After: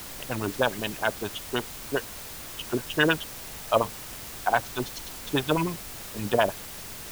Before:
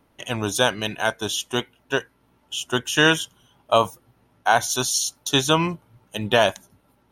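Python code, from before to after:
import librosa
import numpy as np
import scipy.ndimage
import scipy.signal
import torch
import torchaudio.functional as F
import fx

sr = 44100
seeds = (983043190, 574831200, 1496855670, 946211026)

y = fx.filter_lfo_lowpass(x, sr, shape='sine', hz=9.7, low_hz=290.0, high_hz=2900.0, q=1.6)
y = fx.quant_dither(y, sr, seeds[0], bits=6, dither='triangular')
y = fx.dmg_noise_colour(y, sr, seeds[1], colour='pink', level_db=-39.0)
y = F.gain(torch.from_numpy(y), -5.5).numpy()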